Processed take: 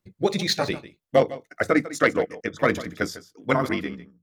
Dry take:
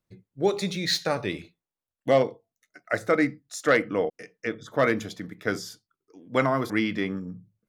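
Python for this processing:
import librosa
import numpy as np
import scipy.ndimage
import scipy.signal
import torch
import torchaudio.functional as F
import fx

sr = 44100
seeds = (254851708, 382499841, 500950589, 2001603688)

y = fx.fade_out_tail(x, sr, length_s=1.2)
y = y + 10.0 ** (-16.0 / 20.0) * np.pad(y, (int(274 * sr / 1000.0), 0))[:len(y)]
y = fx.stretch_grains(y, sr, factor=0.55, grain_ms=40.0)
y = y * 10.0 ** (4.0 / 20.0)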